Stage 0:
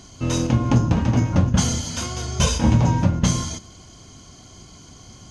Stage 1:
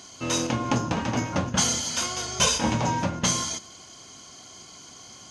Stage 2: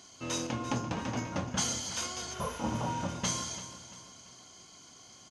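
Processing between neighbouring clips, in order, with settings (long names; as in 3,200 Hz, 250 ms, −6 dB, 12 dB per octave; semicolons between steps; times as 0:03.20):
high-pass filter 650 Hz 6 dB per octave; level +2.5 dB
repeating echo 341 ms, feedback 43%, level −13 dB; healed spectral selection 0:02.36–0:03.05, 1,400–9,700 Hz after; level −8.5 dB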